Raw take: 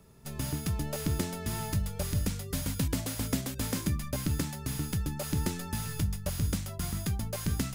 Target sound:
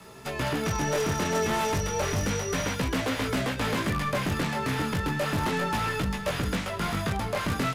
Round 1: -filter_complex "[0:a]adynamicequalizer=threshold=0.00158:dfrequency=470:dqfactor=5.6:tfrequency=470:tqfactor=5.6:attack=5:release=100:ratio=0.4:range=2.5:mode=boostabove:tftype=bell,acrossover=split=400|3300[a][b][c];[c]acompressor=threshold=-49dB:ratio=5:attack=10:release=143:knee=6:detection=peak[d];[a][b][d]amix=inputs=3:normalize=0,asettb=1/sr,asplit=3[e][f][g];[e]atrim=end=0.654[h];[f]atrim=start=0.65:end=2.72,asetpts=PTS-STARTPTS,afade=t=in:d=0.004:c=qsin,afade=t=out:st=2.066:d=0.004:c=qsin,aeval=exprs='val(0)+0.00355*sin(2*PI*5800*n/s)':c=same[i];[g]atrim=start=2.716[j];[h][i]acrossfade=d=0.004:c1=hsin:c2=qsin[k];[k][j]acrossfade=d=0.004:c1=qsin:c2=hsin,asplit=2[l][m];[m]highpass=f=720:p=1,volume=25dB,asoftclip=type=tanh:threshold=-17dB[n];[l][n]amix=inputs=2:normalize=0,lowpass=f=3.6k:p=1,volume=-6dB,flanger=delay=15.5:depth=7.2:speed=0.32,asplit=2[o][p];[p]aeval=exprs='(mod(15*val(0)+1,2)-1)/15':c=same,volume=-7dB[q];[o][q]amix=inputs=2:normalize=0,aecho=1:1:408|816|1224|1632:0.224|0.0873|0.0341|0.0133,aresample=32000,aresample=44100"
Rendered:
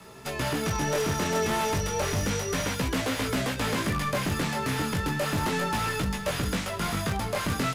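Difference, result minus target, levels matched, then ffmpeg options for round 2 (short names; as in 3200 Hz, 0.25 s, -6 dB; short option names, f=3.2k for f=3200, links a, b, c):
compressor: peak gain reduction -6.5 dB
-filter_complex "[0:a]adynamicequalizer=threshold=0.00158:dfrequency=470:dqfactor=5.6:tfrequency=470:tqfactor=5.6:attack=5:release=100:ratio=0.4:range=2.5:mode=boostabove:tftype=bell,acrossover=split=400|3300[a][b][c];[c]acompressor=threshold=-57dB:ratio=5:attack=10:release=143:knee=6:detection=peak[d];[a][b][d]amix=inputs=3:normalize=0,asettb=1/sr,asplit=3[e][f][g];[e]atrim=end=0.654[h];[f]atrim=start=0.65:end=2.72,asetpts=PTS-STARTPTS,afade=t=in:d=0.004:c=qsin,afade=t=out:st=2.066:d=0.004:c=qsin,aeval=exprs='val(0)+0.00355*sin(2*PI*5800*n/s)':c=same[i];[g]atrim=start=2.716[j];[h][i]acrossfade=d=0.004:c1=hsin:c2=qsin[k];[k][j]acrossfade=d=0.004:c1=qsin:c2=hsin,asplit=2[l][m];[m]highpass=f=720:p=1,volume=25dB,asoftclip=type=tanh:threshold=-17dB[n];[l][n]amix=inputs=2:normalize=0,lowpass=f=3.6k:p=1,volume=-6dB,flanger=delay=15.5:depth=7.2:speed=0.32,asplit=2[o][p];[p]aeval=exprs='(mod(15*val(0)+1,2)-1)/15':c=same,volume=-7dB[q];[o][q]amix=inputs=2:normalize=0,aecho=1:1:408|816|1224|1632:0.224|0.0873|0.0341|0.0133,aresample=32000,aresample=44100"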